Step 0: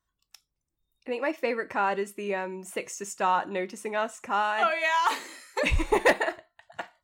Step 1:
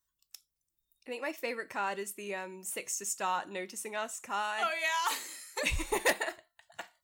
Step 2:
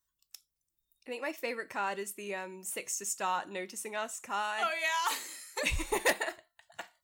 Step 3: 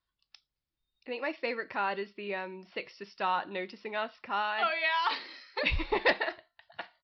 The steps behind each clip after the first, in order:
pre-emphasis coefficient 0.8; gain +4.5 dB
nothing audible
downsampling 11025 Hz; gain +2.5 dB

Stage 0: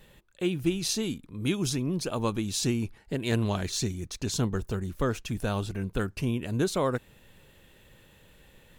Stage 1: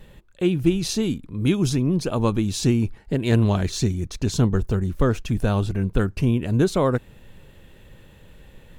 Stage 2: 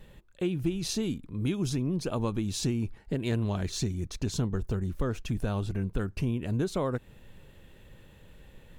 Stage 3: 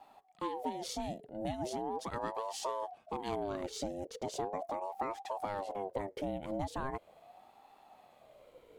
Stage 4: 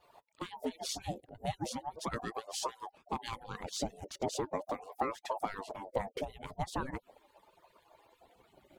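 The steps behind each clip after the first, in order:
tilt -1.5 dB/oct; gain +5 dB
compressor 2.5:1, threshold -22 dBFS, peak gain reduction 7 dB; gain -5 dB
ring modulator with a swept carrier 610 Hz, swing 30%, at 0.39 Hz; gain -5.5 dB
median-filter separation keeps percussive; gain +4.5 dB

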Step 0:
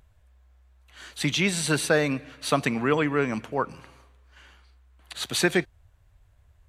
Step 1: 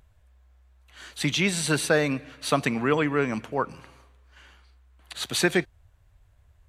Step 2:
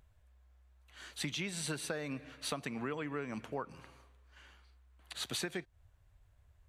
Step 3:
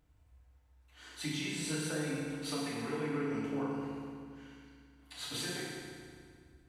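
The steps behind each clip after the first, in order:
nothing audible
compressor 10:1, threshold -28 dBFS, peak gain reduction 13 dB; gain -6.5 dB
FDN reverb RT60 2.1 s, low-frequency decay 1.35×, high-frequency decay 0.8×, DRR -9 dB; gain -8.5 dB

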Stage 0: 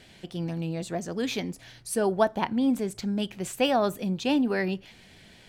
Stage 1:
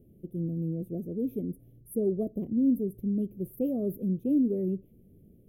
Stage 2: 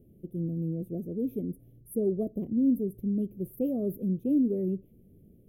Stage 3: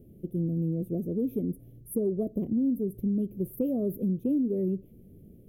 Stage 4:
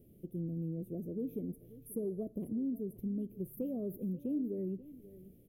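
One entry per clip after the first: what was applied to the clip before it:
inverse Chebyshev band-stop 840–7900 Hz, stop band 40 dB
nothing audible
compressor 4:1, threshold -30 dBFS, peak gain reduction 8.5 dB; gain +5 dB
resonator 150 Hz, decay 1 s, harmonics all, mix 50%; echo 0.536 s -18.5 dB; mismatched tape noise reduction encoder only; gain -3.5 dB

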